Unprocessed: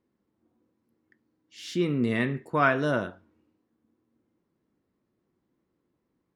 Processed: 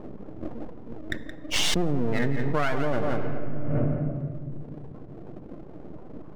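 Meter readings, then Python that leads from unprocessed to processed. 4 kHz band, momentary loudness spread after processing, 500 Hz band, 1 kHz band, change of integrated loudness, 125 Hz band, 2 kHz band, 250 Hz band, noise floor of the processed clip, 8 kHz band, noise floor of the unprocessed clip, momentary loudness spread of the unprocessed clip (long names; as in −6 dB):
+12.0 dB, 18 LU, +1.0 dB, −2.0 dB, −2.0 dB, +6.0 dB, −2.0 dB, +1.5 dB, −41 dBFS, +15.5 dB, −79 dBFS, 12 LU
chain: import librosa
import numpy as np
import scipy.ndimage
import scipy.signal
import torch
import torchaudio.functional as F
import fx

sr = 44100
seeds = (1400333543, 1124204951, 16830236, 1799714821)

p1 = fx.spec_gate(x, sr, threshold_db=-15, keep='strong')
p2 = fx.dereverb_blind(p1, sr, rt60_s=1.8)
p3 = fx.lowpass(p2, sr, hz=1100.0, slope=6)
p4 = np.maximum(p3, 0.0)
p5 = p4 + fx.echo_single(p4, sr, ms=172, db=-12.0, dry=0)
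p6 = fx.room_shoebox(p5, sr, seeds[0], volume_m3=2300.0, walls='mixed', distance_m=0.45)
p7 = fx.env_flatten(p6, sr, amount_pct=100)
y = p7 * 10.0 ** (1.5 / 20.0)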